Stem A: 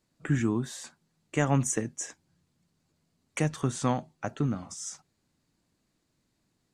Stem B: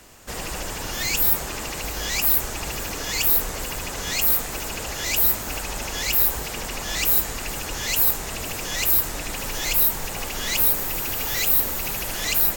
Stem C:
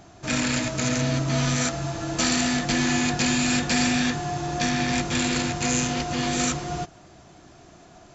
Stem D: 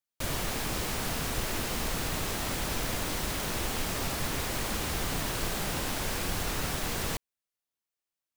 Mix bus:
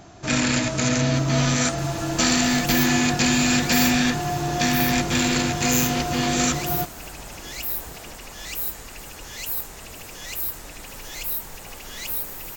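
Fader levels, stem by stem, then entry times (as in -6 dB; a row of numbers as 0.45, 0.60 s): -12.0, -9.0, +3.0, -19.5 dB; 0.00, 1.50, 0.00, 0.95 s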